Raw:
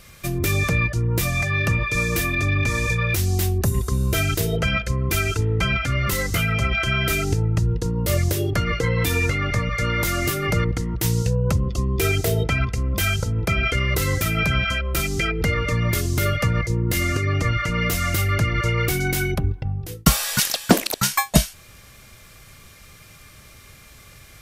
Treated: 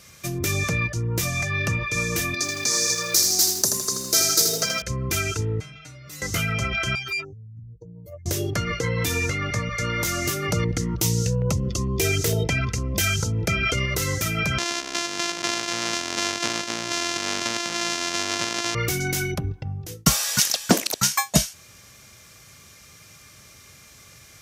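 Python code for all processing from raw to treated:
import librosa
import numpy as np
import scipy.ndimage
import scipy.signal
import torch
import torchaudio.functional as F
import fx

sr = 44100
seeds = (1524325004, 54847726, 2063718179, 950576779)

y = fx.chain(x, sr, fx.highpass(hz=280.0, slope=12),
    fx.high_shelf_res(hz=3600.0, db=7.5, q=3.0),
    fx.echo_crushed(ms=80, feedback_pct=55, bits=6, wet_db=-5), at=(2.34, 4.82))
y = fx.chain(y, sr, fx.stiff_resonator(f0_hz=150.0, decay_s=0.47, stiffness=0.002),
    fx.env_flatten(amount_pct=50), at=(5.6, 6.22))
y = fx.chain(y, sr, fx.spec_expand(power=2.9),
    fx.riaa(side='recording'),
    fx.tube_stage(drive_db=19.0, bias=0.7), at=(6.95, 8.26))
y = fx.chain(y, sr, fx.filter_lfo_notch(shape='saw_down', hz=2.2, low_hz=560.0, high_hz=2100.0, q=2.5),
    fx.env_flatten(amount_pct=50), at=(10.51, 13.86))
y = fx.chain(y, sr, fx.sample_sort(block=128),
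    fx.bandpass_edges(low_hz=200.0, high_hz=5800.0),
    fx.tilt_shelf(db=-7.0, hz=1300.0), at=(14.58, 18.75))
y = scipy.signal.sosfilt(scipy.signal.butter(2, 83.0, 'highpass', fs=sr, output='sos'), y)
y = fx.peak_eq(y, sr, hz=6100.0, db=8.0, octaves=0.68)
y = y * librosa.db_to_amplitude(-3.0)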